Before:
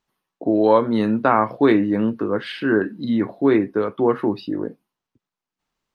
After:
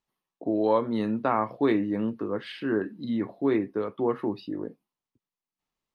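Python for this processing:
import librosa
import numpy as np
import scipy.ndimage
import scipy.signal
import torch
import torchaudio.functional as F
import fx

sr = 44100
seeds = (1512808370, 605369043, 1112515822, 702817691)

y = fx.peak_eq(x, sr, hz=1500.0, db=-6.0, octaves=0.2)
y = y * librosa.db_to_amplitude(-8.0)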